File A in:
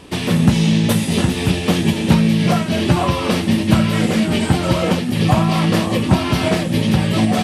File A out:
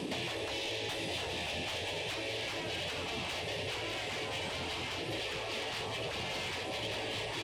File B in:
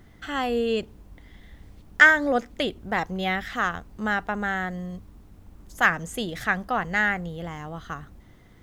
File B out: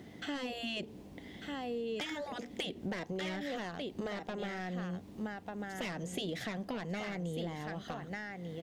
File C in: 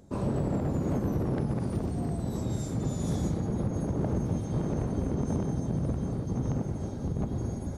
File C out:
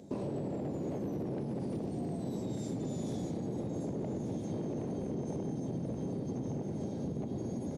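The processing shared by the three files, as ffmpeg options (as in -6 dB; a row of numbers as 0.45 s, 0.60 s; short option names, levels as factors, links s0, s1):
-filter_complex "[0:a]highpass=190,highshelf=f=6800:g=-11.5,aecho=1:1:1194:0.266,acrossover=split=4900[s0][s1];[s1]acompressor=threshold=0.00316:ratio=4:attack=1:release=60[s2];[s0][s2]amix=inputs=2:normalize=0,afftfilt=real='re*lt(hypot(re,im),0.251)':imag='im*lt(hypot(re,im),0.251)':win_size=1024:overlap=0.75,asoftclip=type=tanh:threshold=0.0531,acompressor=threshold=0.00891:ratio=6,equalizer=f=1300:t=o:w=1.1:g=-12,volume=2.37"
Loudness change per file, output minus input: -19.5 LU, -15.5 LU, -6.5 LU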